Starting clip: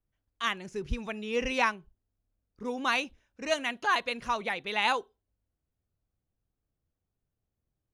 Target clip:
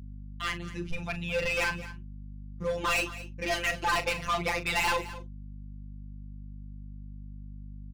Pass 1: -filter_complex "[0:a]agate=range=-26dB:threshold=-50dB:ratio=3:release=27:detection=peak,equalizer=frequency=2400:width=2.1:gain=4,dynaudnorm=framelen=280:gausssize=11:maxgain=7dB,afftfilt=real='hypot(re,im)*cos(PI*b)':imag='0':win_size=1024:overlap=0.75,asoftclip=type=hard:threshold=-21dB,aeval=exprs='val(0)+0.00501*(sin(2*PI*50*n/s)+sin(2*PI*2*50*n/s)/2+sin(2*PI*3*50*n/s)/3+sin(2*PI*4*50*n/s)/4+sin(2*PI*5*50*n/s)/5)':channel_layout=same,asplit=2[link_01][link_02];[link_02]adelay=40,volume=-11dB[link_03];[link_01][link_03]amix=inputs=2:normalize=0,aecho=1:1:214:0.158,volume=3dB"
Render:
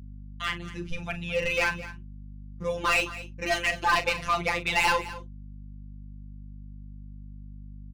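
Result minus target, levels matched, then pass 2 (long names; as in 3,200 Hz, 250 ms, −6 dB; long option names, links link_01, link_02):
hard clipping: distortion −4 dB
-filter_complex "[0:a]agate=range=-26dB:threshold=-50dB:ratio=3:release=27:detection=peak,equalizer=frequency=2400:width=2.1:gain=4,dynaudnorm=framelen=280:gausssize=11:maxgain=7dB,afftfilt=real='hypot(re,im)*cos(PI*b)':imag='0':win_size=1024:overlap=0.75,asoftclip=type=hard:threshold=-27.5dB,aeval=exprs='val(0)+0.00501*(sin(2*PI*50*n/s)+sin(2*PI*2*50*n/s)/2+sin(2*PI*3*50*n/s)/3+sin(2*PI*4*50*n/s)/4+sin(2*PI*5*50*n/s)/5)':channel_layout=same,asplit=2[link_01][link_02];[link_02]adelay=40,volume=-11dB[link_03];[link_01][link_03]amix=inputs=2:normalize=0,aecho=1:1:214:0.158,volume=3dB"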